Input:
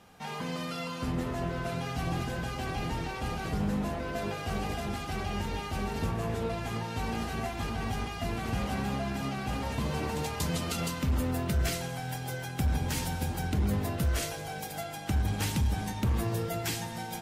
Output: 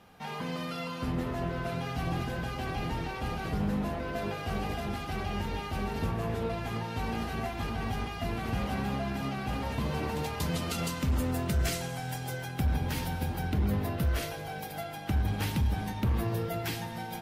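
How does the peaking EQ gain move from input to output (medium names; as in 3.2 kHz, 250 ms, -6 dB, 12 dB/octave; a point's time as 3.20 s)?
peaking EQ 7.5 kHz 0.96 oct
10.39 s -6.5 dB
10.96 s +0.5 dB
12.24 s +0.5 dB
12.74 s -10 dB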